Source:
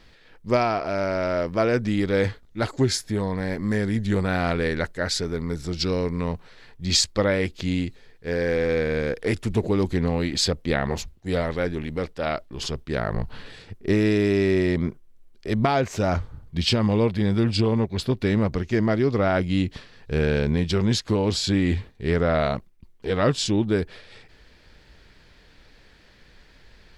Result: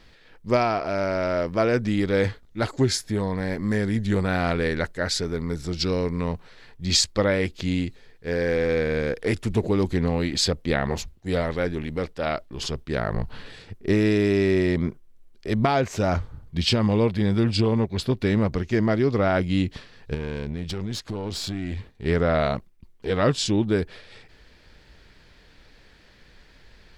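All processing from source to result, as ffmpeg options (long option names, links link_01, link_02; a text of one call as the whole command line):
ffmpeg -i in.wav -filter_complex "[0:a]asettb=1/sr,asplit=3[link_01][link_02][link_03];[link_01]atrim=end=20.144[link_04];[link_02]atrim=start=20.14:end=22.06,asetpts=PTS-STARTPTS,afade=type=in:duration=0.004:curve=qsin,afade=type=out:start_time=1.916:duration=0.004:curve=qsin,acompressor=threshold=-25dB:ratio=3:attack=3.2:release=140:knee=1:detection=peak,aeval=exprs='(tanh(14.1*val(0)+0.45)-tanh(0.45))/14.1':channel_layout=same[link_05];[link_03]atrim=start=22.056[link_06];[link_04][link_05]acrossfade=duration=0.004:curve1=hsin:curve2=qsin[link_07];[link_07][link_06]acrossfade=duration=0.004:curve1=qsin:curve2=hsin" out.wav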